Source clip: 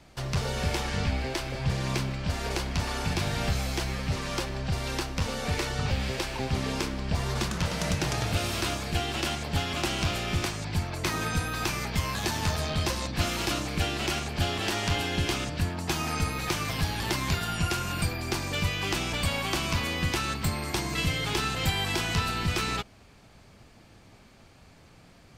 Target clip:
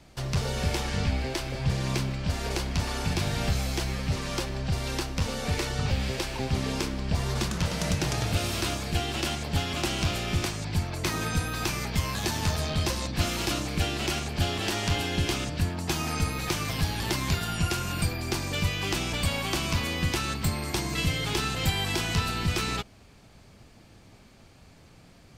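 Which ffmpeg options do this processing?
ffmpeg -i in.wav -af "equalizer=frequency=1300:width=0.48:gain=-3,volume=1.5dB" out.wav

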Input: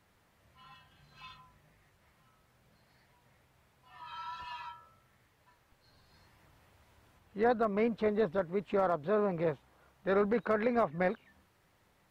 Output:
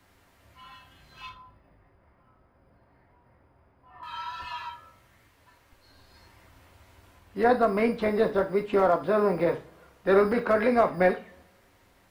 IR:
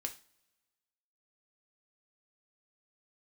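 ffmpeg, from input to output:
-filter_complex "[0:a]asettb=1/sr,asplit=3[link_01][link_02][link_03];[link_01]atrim=end=1.294[link_04];[link_02]atrim=start=1.29:end=4.03,asetpts=PTS-STARTPTS,afade=type=in:duration=0.004:curve=qsin,afade=type=out:start_time=2.736:duration=0.004:curve=qsin,lowpass=1200[link_05];[link_03]atrim=start=4.026[link_06];[link_04][link_05]acrossfade=duration=0.004:curve1=hsin:curve2=qsin[link_07];[link_07][link_06]acrossfade=duration=0.004:curve1=qsin:curve2=hsin,acrossover=split=190|630[link_08][link_09][link_10];[link_08]acrusher=samples=9:mix=1:aa=0.000001[link_11];[link_11][link_09][link_10]amix=inputs=3:normalize=0[link_12];[1:a]atrim=start_sample=2205[link_13];[link_12][link_13]afir=irnorm=-1:irlink=0,volume=9dB"

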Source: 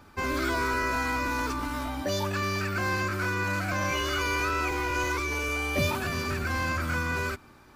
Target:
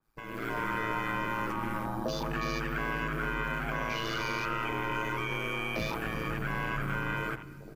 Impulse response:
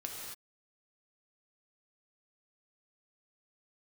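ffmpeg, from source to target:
-filter_complex "[0:a]aemphasis=mode=production:type=50fm,asoftclip=type=hard:threshold=-23dB,aeval=exprs='val(0)*sin(2*PI*56*n/s)':channel_layout=same,asplit=2[link_01][link_02];[link_02]aecho=0:1:193|386|579|772:0.1|0.051|0.026|0.0133[link_03];[link_01][link_03]amix=inputs=2:normalize=0,acompressor=threshold=-34dB:ratio=5,asplit=2[link_04][link_05];[link_05]adelay=399,lowpass=frequency=2700:poles=1,volume=-10.5dB,asplit=2[link_06][link_07];[link_07]adelay=399,lowpass=frequency=2700:poles=1,volume=0.34,asplit=2[link_08][link_09];[link_09]adelay=399,lowpass=frequency=2700:poles=1,volume=0.34,asplit=2[link_10][link_11];[link_11]adelay=399,lowpass=frequency=2700:poles=1,volume=0.34[link_12];[link_04][link_06][link_08][link_10][link_12]amix=inputs=5:normalize=0,afwtdn=0.00708,dynaudnorm=framelen=250:gausssize=3:maxgain=13dB,asplit=2[link_13][link_14];[1:a]atrim=start_sample=2205[link_15];[link_14][link_15]afir=irnorm=-1:irlink=0,volume=-15dB[link_16];[link_13][link_16]amix=inputs=2:normalize=0,adynamicequalizer=threshold=0.0141:dfrequency=2600:dqfactor=0.7:tfrequency=2600:tqfactor=0.7:attack=5:release=100:ratio=0.375:range=1.5:mode=cutabove:tftype=highshelf,volume=-8.5dB"

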